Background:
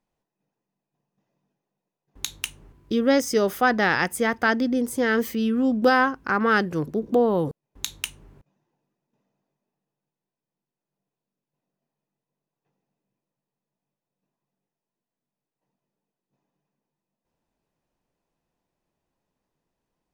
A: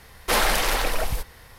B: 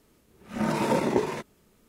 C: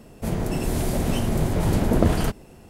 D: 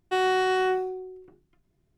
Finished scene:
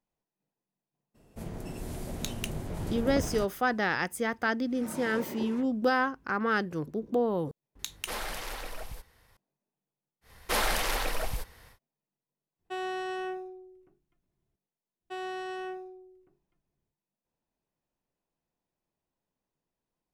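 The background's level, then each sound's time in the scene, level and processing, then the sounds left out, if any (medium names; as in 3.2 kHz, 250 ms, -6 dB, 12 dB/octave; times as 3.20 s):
background -7.5 dB
1.14 s: add C -14 dB, fades 0.02 s
4.19 s: add B -14.5 dB + phase dispersion lows, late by 63 ms, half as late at 1.9 kHz
7.79 s: add A -15.5 dB
10.21 s: add A -7 dB, fades 0.10 s
12.59 s: add D -11 dB + band-stop 4.7 kHz, Q 13
14.99 s: add D -13.5 dB, fades 0.10 s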